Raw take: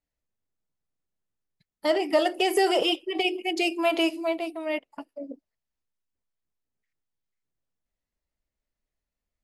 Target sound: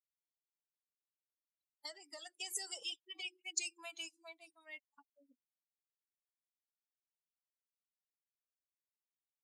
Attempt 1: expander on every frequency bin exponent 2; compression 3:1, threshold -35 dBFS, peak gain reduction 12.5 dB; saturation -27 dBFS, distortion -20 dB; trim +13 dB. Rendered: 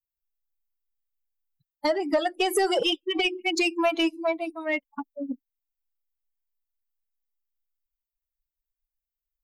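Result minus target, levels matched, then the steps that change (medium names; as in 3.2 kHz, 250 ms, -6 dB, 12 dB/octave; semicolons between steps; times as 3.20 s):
8 kHz band -14.0 dB
add after compression: band-pass filter 7.2 kHz, Q 3.6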